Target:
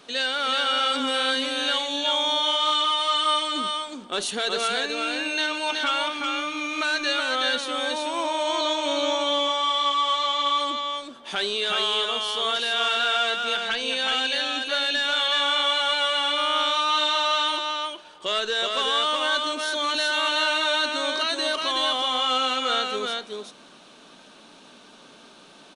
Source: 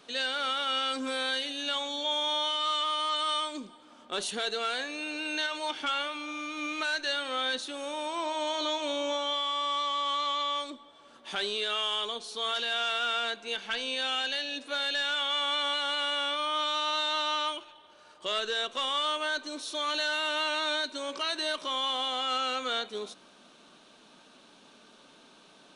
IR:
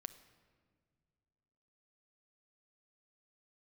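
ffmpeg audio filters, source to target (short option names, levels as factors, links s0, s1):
-af "aecho=1:1:373:0.668,volume=1.88"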